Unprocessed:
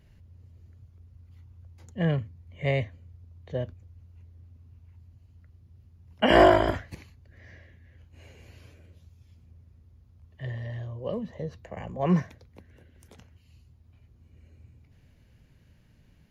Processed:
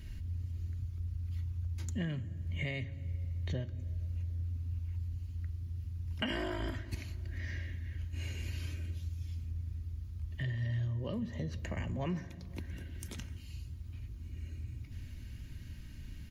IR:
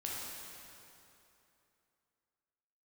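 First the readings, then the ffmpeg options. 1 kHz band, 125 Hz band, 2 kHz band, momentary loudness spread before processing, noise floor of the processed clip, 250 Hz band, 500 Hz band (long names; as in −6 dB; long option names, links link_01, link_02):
−21.0 dB, −1.0 dB, −10.5 dB, 22 LU, −47 dBFS, −10.5 dB, −18.5 dB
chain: -filter_complex "[0:a]equalizer=frequency=650:width_type=o:width=1.8:gain=-14.5,aecho=1:1:3.2:0.43,acompressor=threshold=-47dB:ratio=8,asplit=2[link_01][link_02];[1:a]atrim=start_sample=2205,lowshelf=frequency=360:gain=12[link_03];[link_02][link_03]afir=irnorm=-1:irlink=0,volume=-18dB[link_04];[link_01][link_04]amix=inputs=2:normalize=0,volume=11dB"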